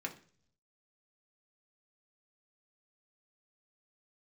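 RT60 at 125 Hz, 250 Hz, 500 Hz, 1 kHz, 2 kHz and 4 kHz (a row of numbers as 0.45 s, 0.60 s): 1.0 s, 0.70 s, 0.55 s, 0.40 s, 0.45 s, 0.60 s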